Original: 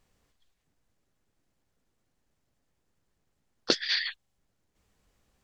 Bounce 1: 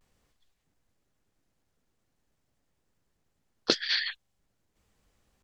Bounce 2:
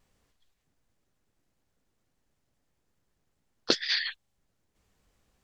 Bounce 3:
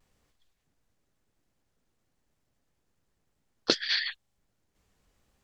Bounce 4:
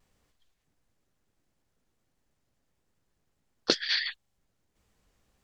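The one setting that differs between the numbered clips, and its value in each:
vibrato, rate: 0.46, 2.4, 0.98, 1.5 Hz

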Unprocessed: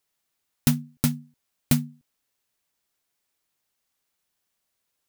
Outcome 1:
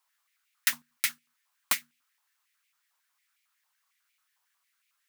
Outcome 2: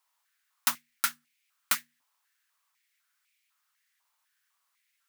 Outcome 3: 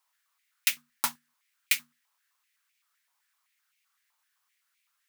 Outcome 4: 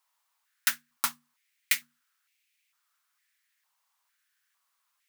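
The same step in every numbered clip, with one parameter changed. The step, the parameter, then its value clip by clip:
stepped high-pass, rate: 11, 4, 7.8, 2.2 Hz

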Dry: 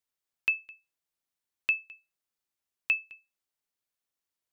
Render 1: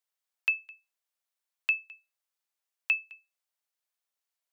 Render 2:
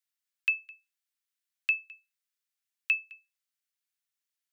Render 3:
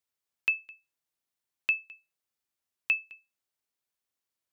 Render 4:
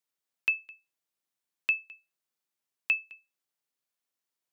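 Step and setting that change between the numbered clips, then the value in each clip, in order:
HPF, cutoff: 500, 1400, 41, 120 Hz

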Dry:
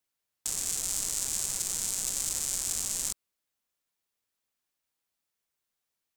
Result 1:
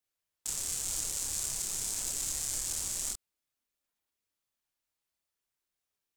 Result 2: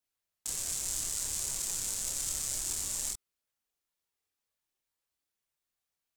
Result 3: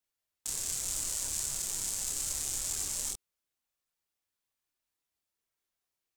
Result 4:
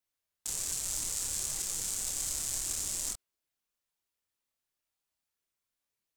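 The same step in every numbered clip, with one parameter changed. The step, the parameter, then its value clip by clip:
chorus, rate: 2.1, 0.49, 0.74, 1.3 Hz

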